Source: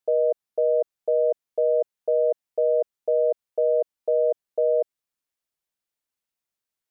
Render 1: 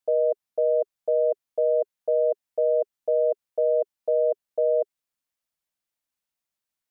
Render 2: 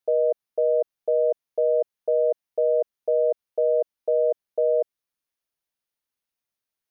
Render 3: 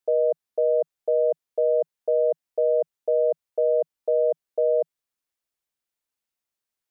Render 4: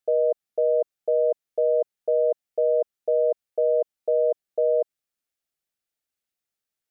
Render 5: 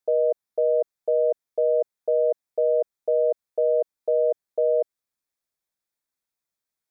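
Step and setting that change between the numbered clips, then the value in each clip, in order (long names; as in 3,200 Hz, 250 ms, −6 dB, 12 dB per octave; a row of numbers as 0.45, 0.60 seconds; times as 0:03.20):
notch filter, centre frequency: 410, 7,600, 160, 1,000, 2,900 Hertz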